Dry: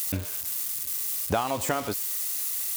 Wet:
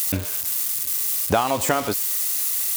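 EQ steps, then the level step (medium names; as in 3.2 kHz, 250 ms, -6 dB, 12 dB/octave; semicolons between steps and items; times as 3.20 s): bass shelf 120 Hz -4 dB; +6.5 dB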